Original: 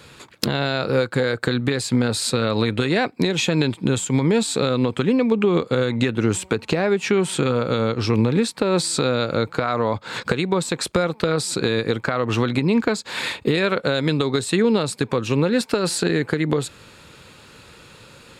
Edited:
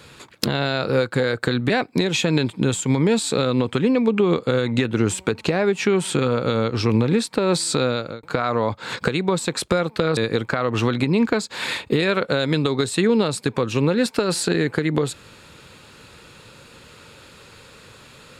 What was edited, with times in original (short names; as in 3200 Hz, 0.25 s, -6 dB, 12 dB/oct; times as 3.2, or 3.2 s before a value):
1.7–2.94 cut
9.11–9.47 fade out
11.41–11.72 cut